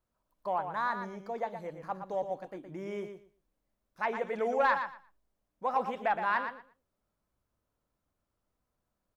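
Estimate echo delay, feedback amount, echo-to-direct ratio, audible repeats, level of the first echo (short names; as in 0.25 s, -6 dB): 0.117 s, 18%, -8.0 dB, 2, -8.0 dB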